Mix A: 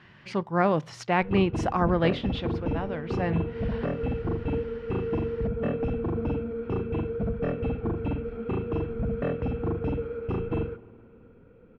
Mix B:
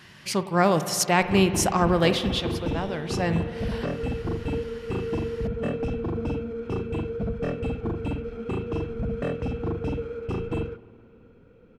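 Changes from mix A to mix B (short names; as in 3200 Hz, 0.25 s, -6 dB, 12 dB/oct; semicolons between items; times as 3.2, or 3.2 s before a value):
speech: send on; master: remove LPF 2400 Hz 12 dB/oct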